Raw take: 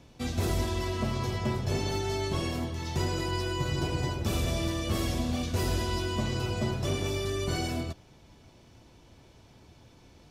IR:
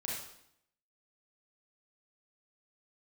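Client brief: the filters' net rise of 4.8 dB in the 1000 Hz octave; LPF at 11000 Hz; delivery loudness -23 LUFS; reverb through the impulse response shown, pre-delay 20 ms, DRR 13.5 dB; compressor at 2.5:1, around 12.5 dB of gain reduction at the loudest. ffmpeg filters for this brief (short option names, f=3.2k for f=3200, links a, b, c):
-filter_complex "[0:a]lowpass=11k,equalizer=f=1k:t=o:g=5.5,acompressor=threshold=-44dB:ratio=2.5,asplit=2[a][b];[1:a]atrim=start_sample=2205,adelay=20[c];[b][c]afir=irnorm=-1:irlink=0,volume=-15.5dB[d];[a][d]amix=inputs=2:normalize=0,volume=18.5dB"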